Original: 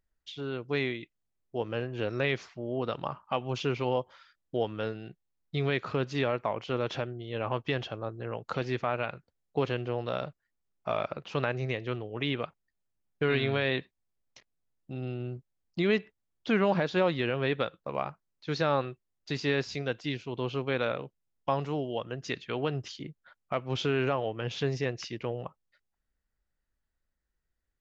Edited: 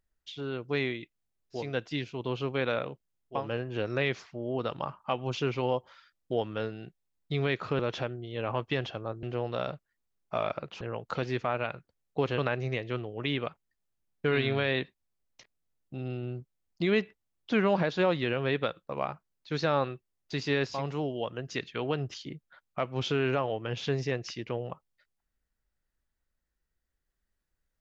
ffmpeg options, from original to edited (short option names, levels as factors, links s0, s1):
-filter_complex "[0:a]asplit=8[s0][s1][s2][s3][s4][s5][s6][s7];[s0]atrim=end=1.74[s8];[s1]atrim=start=19.63:end=21.64[s9];[s2]atrim=start=1.5:end=6.022[s10];[s3]atrim=start=6.758:end=8.202[s11];[s4]atrim=start=9.768:end=11.352[s12];[s5]atrim=start=8.198:end=9.772[s13];[s6]atrim=start=11.348:end=19.87[s14];[s7]atrim=start=21.4[s15];[s8][s9]acrossfade=d=0.24:c1=tri:c2=tri[s16];[s16][s10]acrossfade=d=0.24:c1=tri:c2=tri[s17];[s17][s11]acrossfade=d=0.004:c1=hsin:c2=hsin[s18];[s18][s12]acrossfade=d=0.004:c1=hsin:c2=hsin[s19];[s19][s13]acrossfade=d=0.004:c1=hsin:c2=hsin[s20];[s20][s14]acrossfade=d=0.004:c1=hsin:c2=hsin[s21];[s21][s15]acrossfade=d=0.24:c1=tri:c2=tri"